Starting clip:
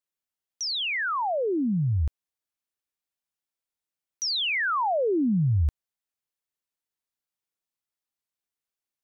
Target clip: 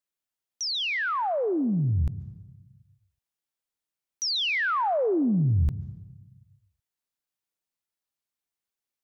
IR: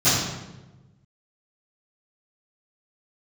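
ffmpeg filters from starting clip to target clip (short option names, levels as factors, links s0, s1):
-filter_complex "[0:a]asplit=2[s0][s1];[1:a]atrim=start_sample=2205,adelay=116[s2];[s1][s2]afir=irnorm=-1:irlink=0,volume=0.00944[s3];[s0][s3]amix=inputs=2:normalize=0"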